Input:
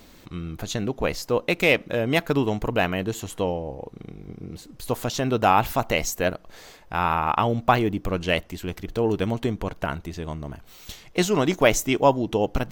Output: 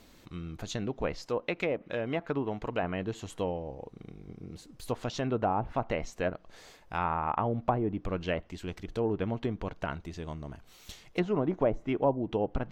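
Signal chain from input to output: low-pass that closes with the level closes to 730 Hz, closed at -15.5 dBFS; 1.26–2.83 s: tilt EQ +1.5 dB/octave; trim -7 dB

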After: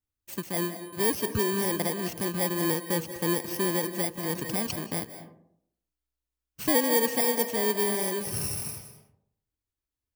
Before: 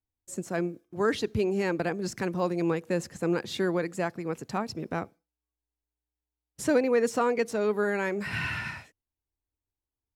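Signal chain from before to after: bit-reversed sample order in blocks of 32 samples; on a send at -10 dB: reverberation RT60 0.70 s, pre-delay 138 ms; 4.23–4.76 s: on the sum: level flattener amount 50%

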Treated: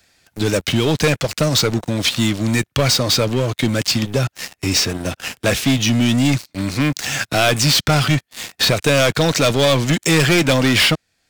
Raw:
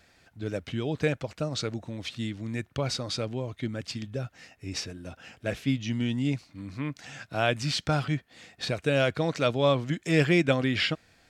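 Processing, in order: treble shelf 3.3 kHz +11.5 dB; waveshaping leveller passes 5; three bands compressed up and down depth 40%; trim -3 dB

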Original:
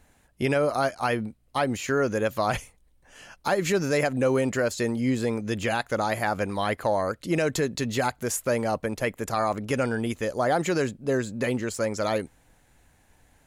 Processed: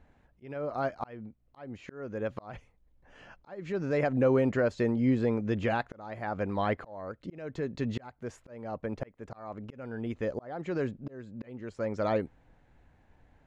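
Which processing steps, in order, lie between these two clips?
slow attack 680 ms; tape spacing loss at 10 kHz 31 dB

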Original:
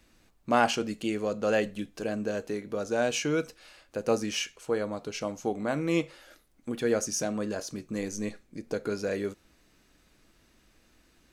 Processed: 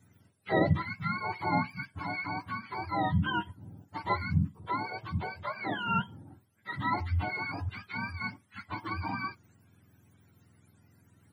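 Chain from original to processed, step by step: spectrum inverted on a logarithmic axis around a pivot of 680 Hz; dynamic bell 750 Hz, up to -3 dB, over -39 dBFS, Q 0.85

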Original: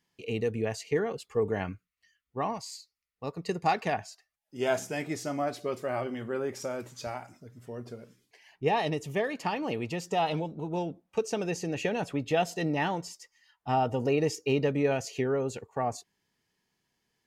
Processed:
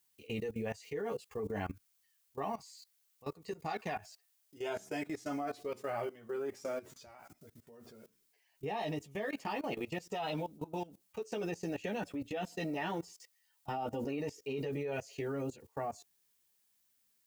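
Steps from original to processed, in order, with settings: chorus voices 6, 0.15 Hz, delay 12 ms, depth 2.5 ms; added noise blue -65 dBFS; level held to a coarse grid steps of 19 dB; trim +1.5 dB

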